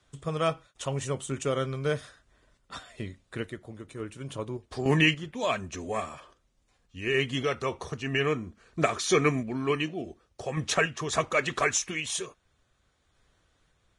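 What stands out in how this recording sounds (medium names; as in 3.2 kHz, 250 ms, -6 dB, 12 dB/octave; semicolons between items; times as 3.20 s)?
random-step tremolo; Vorbis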